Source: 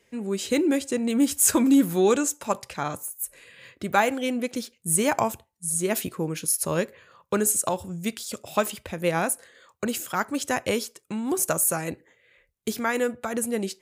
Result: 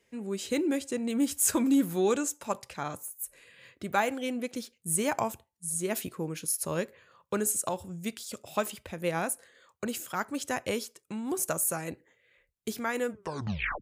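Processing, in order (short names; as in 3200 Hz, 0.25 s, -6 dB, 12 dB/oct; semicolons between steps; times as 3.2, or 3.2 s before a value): tape stop at the end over 0.73 s; gain -6 dB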